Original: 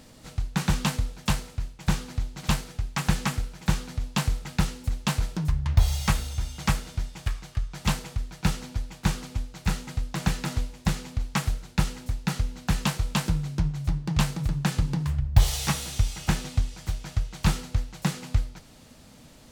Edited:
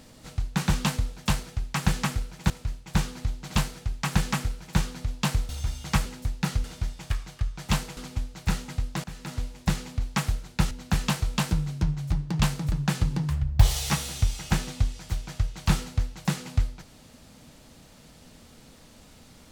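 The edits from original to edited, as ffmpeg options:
-filter_complex "[0:a]asplit=9[a][b][c][d][e][f][g][h][i];[a]atrim=end=1.432[j];[b]atrim=start=2.648:end=3.722[k];[c]atrim=start=1.428:end=4.422[l];[d]atrim=start=6.228:end=6.802[m];[e]atrim=start=11.898:end=12.482[n];[f]atrim=start=6.798:end=8.132[o];[g]atrim=start=9.158:end=10.23,asetpts=PTS-STARTPTS,afade=t=out:st=1.068:d=0.004:c=hsin:silence=0.0891251[p];[h]atrim=start=10.23:end=11.902,asetpts=PTS-STARTPTS,afade=t=in:d=0.56:silence=0.0891251[q];[i]atrim=start=12.478[r];[j][k]acrossfade=d=0.004:c1=hsin:c2=hsin[s];[s][l]acrossfade=d=0.004:c1=hsin:c2=hsin[t];[t][m]acrossfade=d=0.004:c1=hsin:c2=hsin[u];[u][n]acrossfade=d=0.004:c1=hsin:c2=hsin[v];[v][o]acrossfade=d=0.004:c1=hsin:c2=hsin[w];[p][q]concat=n=2:v=0:a=1[x];[w][x]acrossfade=d=0.004:c1=hsin:c2=hsin[y];[y][r]acrossfade=d=0.004:c1=hsin:c2=hsin"

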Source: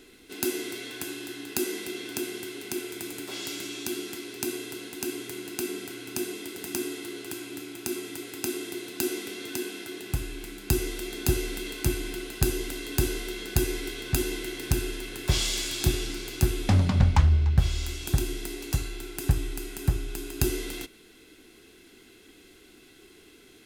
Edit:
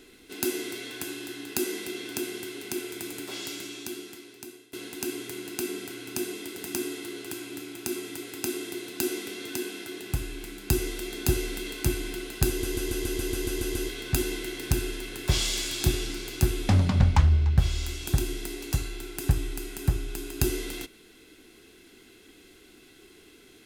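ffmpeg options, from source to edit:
-filter_complex "[0:a]asplit=12[a][b][c][d][e][f][g][h][i][j][k][l];[a]atrim=end=4.73,asetpts=PTS-STARTPTS,afade=t=out:st=3.28:d=1.45:silence=0.0707946[m];[b]atrim=start=4.73:end=12.632,asetpts=PTS-STARTPTS,afade=t=in:d=0.004:c=hsin:silence=0.0707946[n];[c]atrim=start=12.488:end=12.632[o];[d]atrim=start=12.488:end=12.632[p];[e]atrim=start=12.488:end=12.632[q];[f]atrim=start=12.488:end=12.632[r];[g]atrim=start=12.488:end=12.632[s];[h]atrim=start=12.488:end=12.632[t];[i]atrim=start=12.488:end=12.632[u];[j]atrim=start=12.488:end=12.632[v];[k]atrim=start=12.488:end=12.632[w];[l]atrim=start=13.888[x];[m][n]concat=n=2:v=0:a=1[y];[y][o]acrossfade=d=0.004:c1=hsin:c2=hsin[z];[z][p]acrossfade=d=0.004:c1=hsin:c2=hsin[aa];[aa][q]acrossfade=d=0.004:c1=hsin:c2=hsin[ab];[ab][r]acrossfade=d=0.004:c1=hsin:c2=hsin[ac];[ac][s]acrossfade=d=0.004:c1=hsin:c2=hsin[ad];[ad][t]acrossfade=d=0.004:c1=hsin:c2=hsin[ae];[ae][u]acrossfade=d=0.004:c1=hsin:c2=hsin[af];[af][v]acrossfade=d=0.004:c1=hsin:c2=hsin[ag];[ag][w]acrossfade=d=0.004:c1=hsin:c2=hsin[ah];[ah][x]acrossfade=d=0.004:c1=hsin:c2=hsin"

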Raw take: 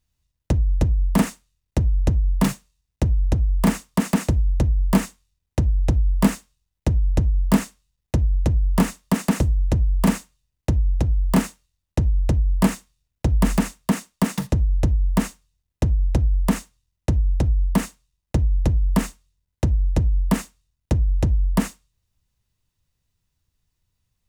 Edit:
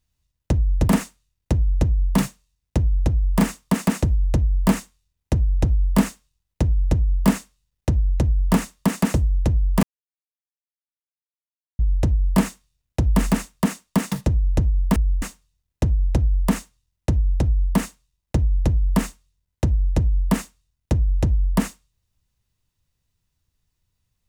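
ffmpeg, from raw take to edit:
-filter_complex "[0:a]asplit=6[a][b][c][d][e][f];[a]atrim=end=0.882[g];[b]atrim=start=1.138:end=10.09,asetpts=PTS-STARTPTS,afade=t=out:st=8.948:d=0.004:c=hsin[h];[c]atrim=start=10.09:end=12.05,asetpts=PTS-STARTPTS,volume=0[i];[d]atrim=start=12.05:end=15.222,asetpts=PTS-STARTPTS,afade=t=in:d=0.004:c=hsin[j];[e]atrim=start=0.878:end=1.142[k];[f]atrim=start=15.218[l];[h][i][j]concat=n=3:v=0:a=1[m];[g][m]acrossfade=d=0.004:c1=hsin:c2=hsin[n];[n][k]acrossfade=d=0.004:c1=hsin:c2=hsin[o];[o][l]acrossfade=d=0.004:c1=hsin:c2=hsin"

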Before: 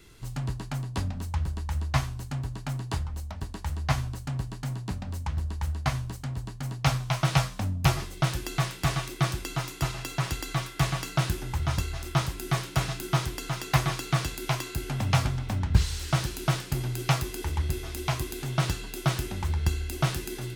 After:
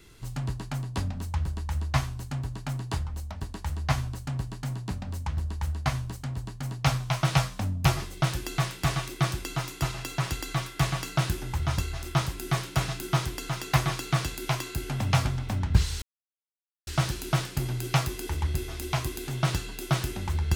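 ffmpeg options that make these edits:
-filter_complex "[0:a]asplit=2[a][b];[a]atrim=end=16.02,asetpts=PTS-STARTPTS,afade=t=out:st=16.016:d=0.004:c=hsin,apad=pad_dur=0.85[c];[b]atrim=start=16.02,asetpts=PTS-STARTPTS,afade=t=in:d=0.004:c=hsin[d];[c][d]concat=n=2:v=0:a=1"

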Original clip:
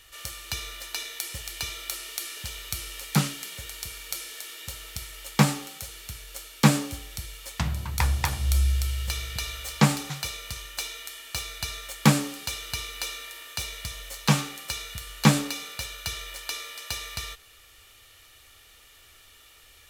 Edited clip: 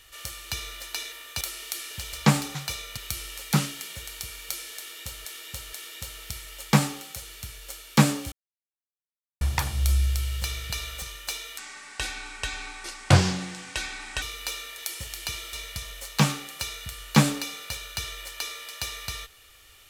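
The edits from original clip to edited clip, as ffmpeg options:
-filter_complex "[0:a]asplit=14[a][b][c][d][e][f][g][h][i][j][k][l][m][n];[a]atrim=end=1.122[o];[b]atrim=start=13.328:end=13.622[p];[c]atrim=start=1.868:end=2.592[q];[d]atrim=start=9.678:end=10.522[r];[e]atrim=start=2.588:end=4.872[s];[f]atrim=start=4.388:end=4.872[t];[g]atrim=start=4.388:end=6.98,asetpts=PTS-STARTPTS,afade=t=out:st=2.588:d=0.004:c=hsin[u];[h]atrim=start=6.98:end=8.07,asetpts=PTS-STARTPTS,volume=0[v];[i]atrim=start=8.07:end=9.682,asetpts=PTS-STARTPTS,afade=t=in:d=0.004:c=hsin[w];[j]atrim=start=10.518:end=11.084[x];[k]atrim=start=11.08:end=12.77,asetpts=PTS-STARTPTS,asetrate=28224,aresample=44100[y];[l]atrim=start=12.766:end=13.332[z];[m]atrim=start=1.118:end=1.872[aa];[n]atrim=start=13.618[ab];[o][p]acrossfade=d=0.004:c1=hsin:c2=hsin[ac];[ac][q]acrossfade=d=0.004:c1=hsin:c2=hsin[ad];[ad][r]acrossfade=d=0.004:c1=hsin:c2=hsin[ae];[ae][s]acrossfade=d=0.004:c1=hsin:c2=hsin[af];[af][t]acrossfade=d=0.004:c1=hsin:c2=hsin[ag];[u][v][w]concat=n=3:v=0:a=1[ah];[ag][ah]acrossfade=d=0.004:c1=hsin:c2=hsin[ai];[ai][x]acrossfade=d=0.004:c1=hsin:c2=hsin[aj];[aj][y]acrossfade=d=0.004:c1=hsin:c2=hsin[ak];[ak][z]acrossfade=d=0.004:c1=hsin:c2=hsin[al];[al][aa]acrossfade=d=0.004:c1=hsin:c2=hsin[am];[am][ab]acrossfade=d=0.004:c1=hsin:c2=hsin"

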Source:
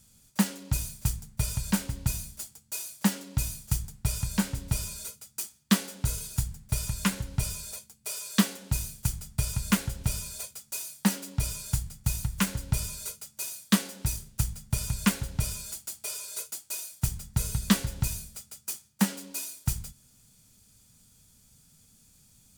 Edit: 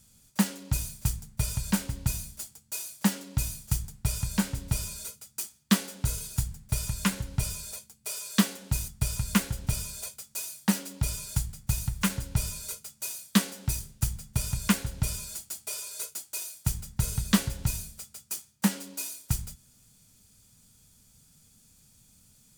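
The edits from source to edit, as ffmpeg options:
-filter_complex "[0:a]asplit=2[a][b];[a]atrim=end=8.882[c];[b]atrim=start=9.248[d];[c][d]acrossfade=d=0.004:c1=hsin:c2=hsin"

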